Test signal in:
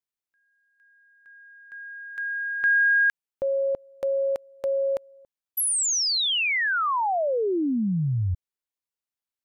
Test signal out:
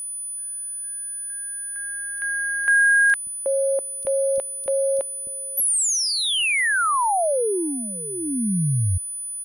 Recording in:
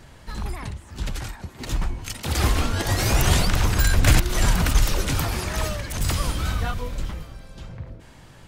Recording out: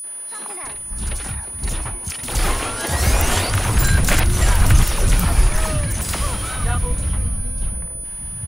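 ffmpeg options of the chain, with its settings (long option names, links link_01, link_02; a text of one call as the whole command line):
ffmpeg -i in.wav -filter_complex "[0:a]acrossover=split=290|4400[link_01][link_02][link_03];[link_02]adelay=40[link_04];[link_01]adelay=630[link_05];[link_05][link_04][link_03]amix=inputs=3:normalize=0,aeval=exprs='val(0)+0.0251*sin(2*PI*9900*n/s)':channel_layout=same,volume=3.5dB" out.wav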